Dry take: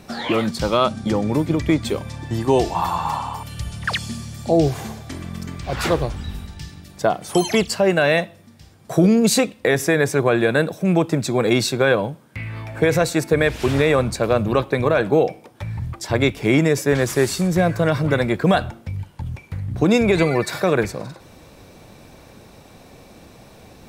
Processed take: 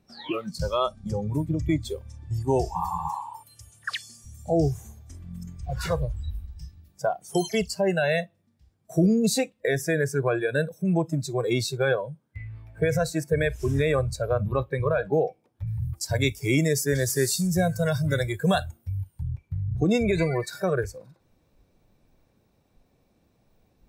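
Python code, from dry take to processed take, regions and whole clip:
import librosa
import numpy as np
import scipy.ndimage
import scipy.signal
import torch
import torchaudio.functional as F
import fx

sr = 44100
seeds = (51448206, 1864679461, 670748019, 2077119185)

y = fx.chain(x, sr, fx.highpass(hz=110.0, slope=24),
    fx.peak_eq(hz=180.0, db=-15.0, octaves=0.75), at=(3.09, 4.25))
y = fx.chain(y, sr, fx.highpass(hz=52.0, slope=12),
    fx.high_shelf(hz=4300.0, db=11.5), at=(15.67, 19.23))
y = fx.dynamic_eq(y, sr, hz=260.0, q=0.93, threshold_db=-28.0, ratio=4.0, max_db=-4)
y = fx.noise_reduce_blind(y, sr, reduce_db=18)
y = fx.low_shelf(y, sr, hz=420.0, db=6.5)
y = y * 10.0 ** (-7.5 / 20.0)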